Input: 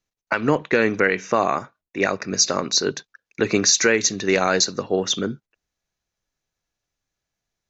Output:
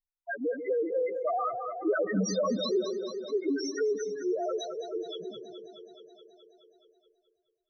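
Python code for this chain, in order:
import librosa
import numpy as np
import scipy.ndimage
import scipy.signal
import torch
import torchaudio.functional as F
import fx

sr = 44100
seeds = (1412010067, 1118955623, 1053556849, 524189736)

p1 = fx.doppler_pass(x, sr, speed_mps=20, closest_m=4.9, pass_at_s=2.22)
p2 = fx.low_shelf(p1, sr, hz=230.0, db=-7.5)
p3 = fx.leveller(p2, sr, passes=5)
p4 = fx.spec_topn(p3, sr, count=1)
p5 = fx.lowpass(p4, sr, hz=1000.0, slope=6)
p6 = p5 + fx.echo_split(p5, sr, split_hz=410.0, low_ms=138, high_ms=212, feedback_pct=52, wet_db=-12.5, dry=0)
p7 = fx.env_flatten(p6, sr, amount_pct=50)
y = p7 * 10.0 ** (-3.0 / 20.0)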